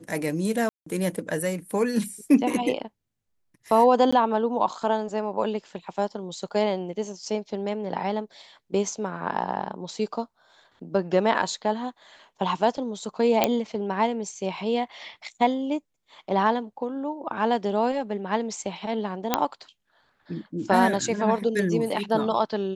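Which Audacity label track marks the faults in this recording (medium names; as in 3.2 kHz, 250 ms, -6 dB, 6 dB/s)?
0.690000	0.860000	dropout 174 ms
4.110000	4.120000	dropout 15 ms
13.440000	13.440000	pop -4 dBFS
19.340000	19.340000	pop -4 dBFS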